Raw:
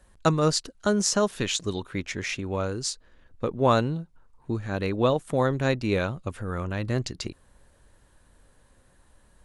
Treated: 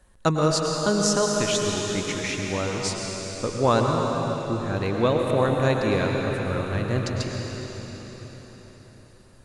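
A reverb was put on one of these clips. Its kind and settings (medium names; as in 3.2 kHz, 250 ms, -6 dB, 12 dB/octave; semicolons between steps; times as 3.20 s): plate-style reverb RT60 4.8 s, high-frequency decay 0.95×, pre-delay 90 ms, DRR 0 dB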